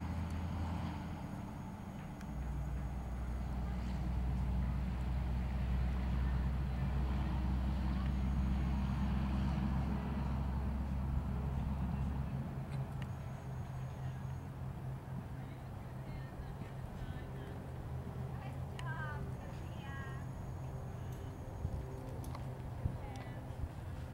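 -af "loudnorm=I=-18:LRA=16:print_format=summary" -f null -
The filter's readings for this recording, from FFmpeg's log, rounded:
Input Integrated:    -41.4 LUFS
Input True Peak:     -24.4 dBTP
Input LRA:             7.5 LU
Input Threshold:     -51.4 LUFS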